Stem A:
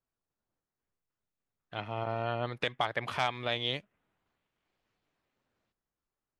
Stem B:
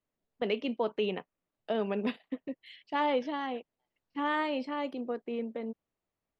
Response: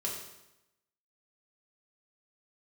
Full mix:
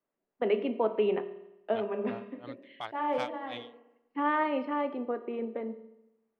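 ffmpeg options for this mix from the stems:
-filter_complex "[0:a]highpass=140,aeval=exprs='val(0)*pow(10,-34*(0.5-0.5*cos(2*PI*2.8*n/s))/20)':c=same,volume=0.501,asplit=2[s0][s1];[1:a]lowpass=3600,acrossover=split=170 2400:gain=0.141 1 0.178[s2][s3][s4];[s2][s3][s4]amix=inputs=3:normalize=0,bandreject=f=50:t=h:w=6,bandreject=f=100:t=h:w=6,bandreject=f=150:t=h:w=6,bandreject=f=200:t=h:w=6,volume=1.12,asplit=2[s5][s6];[s6]volume=0.376[s7];[s1]apad=whole_len=281873[s8];[s5][s8]sidechaincompress=threshold=0.00178:ratio=8:attack=36:release=390[s9];[2:a]atrim=start_sample=2205[s10];[s7][s10]afir=irnorm=-1:irlink=0[s11];[s0][s9][s11]amix=inputs=3:normalize=0"

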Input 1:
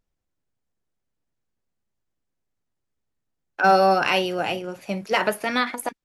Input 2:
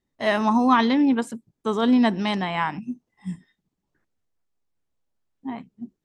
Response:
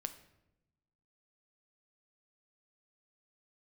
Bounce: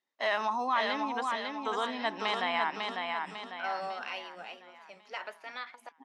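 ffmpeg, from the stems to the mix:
-filter_complex "[0:a]volume=0.15,asplit=2[s0][s1];[1:a]alimiter=limit=0.141:level=0:latency=1:release=75,volume=0.944,asplit=2[s2][s3];[s3]volume=0.631[s4];[s1]apad=whole_len=266443[s5];[s2][s5]sidechaincompress=threshold=0.00316:ratio=8:attack=16:release=1260[s6];[s4]aecho=0:1:549|1098|1647|2196|2745|3294:1|0.46|0.212|0.0973|0.0448|0.0206[s7];[s0][s6][s7]amix=inputs=3:normalize=0,highpass=700,lowpass=5500"

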